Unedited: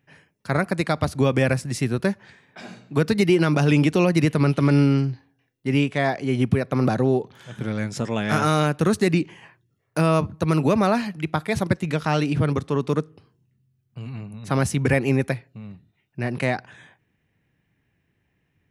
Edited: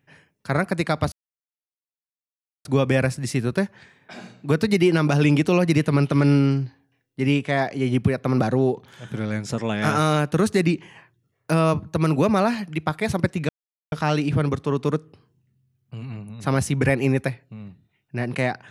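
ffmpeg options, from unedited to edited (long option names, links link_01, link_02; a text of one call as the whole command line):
ffmpeg -i in.wav -filter_complex "[0:a]asplit=3[link_01][link_02][link_03];[link_01]atrim=end=1.12,asetpts=PTS-STARTPTS,afade=type=out:start_time=1.116:duration=0.004:curve=hsin,apad=pad_dur=1.53[link_04];[link_02]atrim=start=1.12:end=11.96,asetpts=PTS-STARTPTS,afade=type=in:duration=0.004:curve=hsin,afade=type=out:start_time=10.836:duration=0.004:curve=hsin,apad=pad_dur=0.43[link_05];[link_03]atrim=start=11.96,asetpts=PTS-STARTPTS,afade=type=in:duration=0.004:curve=hsin[link_06];[link_04][link_05][link_06]concat=n=3:v=0:a=1" out.wav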